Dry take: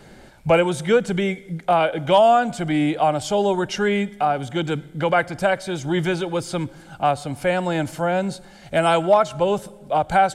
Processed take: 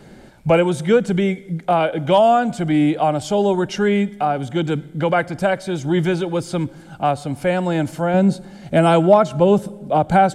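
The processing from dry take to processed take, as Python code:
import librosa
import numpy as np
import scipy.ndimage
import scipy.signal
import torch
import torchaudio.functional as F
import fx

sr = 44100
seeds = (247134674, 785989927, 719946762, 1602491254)

y = fx.peak_eq(x, sr, hz=220.0, db=fx.steps((0.0, 6.0), (8.14, 12.5)), octaves=2.3)
y = y * librosa.db_to_amplitude(-1.0)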